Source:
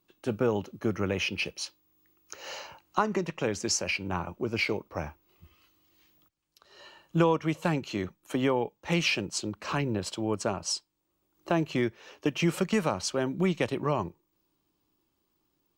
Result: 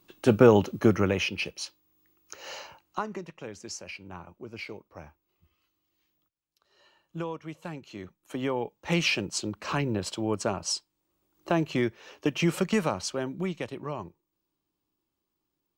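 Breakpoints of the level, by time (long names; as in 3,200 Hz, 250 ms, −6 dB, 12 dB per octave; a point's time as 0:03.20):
0:00.79 +9.5 dB
0:01.33 −0.5 dB
0:02.62 −0.5 dB
0:03.37 −11 dB
0:07.81 −11 dB
0:08.89 +1 dB
0:12.79 +1 dB
0:13.69 −7 dB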